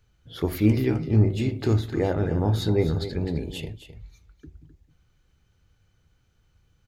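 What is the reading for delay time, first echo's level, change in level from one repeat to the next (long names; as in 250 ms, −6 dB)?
260 ms, −11.5 dB, repeats not evenly spaced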